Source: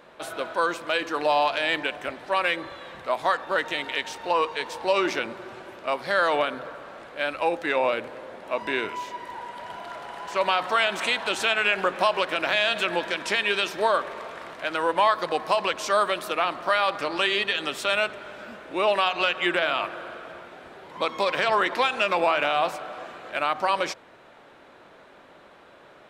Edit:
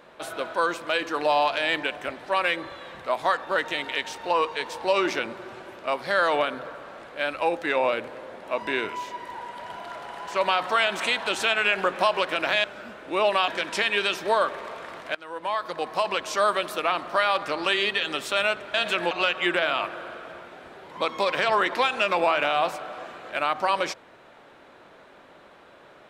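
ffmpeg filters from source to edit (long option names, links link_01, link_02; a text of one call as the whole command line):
ffmpeg -i in.wav -filter_complex "[0:a]asplit=6[link_01][link_02][link_03][link_04][link_05][link_06];[link_01]atrim=end=12.642[link_07];[link_02]atrim=start=18.268:end=19.112[link_08];[link_03]atrim=start=13.008:end=14.68,asetpts=PTS-STARTPTS,afade=type=out:start_time=1.668:duration=0.004:curve=hsin:silence=0.0944061[link_09];[link_04]atrim=start=14.68:end=18.272,asetpts=PTS-STARTPTS,afade=type=in:duration=1.56:curve=qsin:silence=0.0944061[link_10];[link_05]atrim=start=12.638:end=13.012[link_11];[link_06]atrim=start=19.108[link_12];[link_07][link_08]acrossfade=duration=0.004:curve1=hsin:curve2=hsin[link_13];[link_09][link_10]concat=n=2:v=0:a=1[link_14];[link_13][link_14]acrossfade=duration=0.004:curve1=hsin:curve2=hsin[link_15];[link_15][link_11]acrossfade=duration=0.004:curve1=hsin:curve2=hsin[link_16];[link_16][link_12]acrossfade=duration=0.004:curve1=hsin:curve2=hsin" out.wav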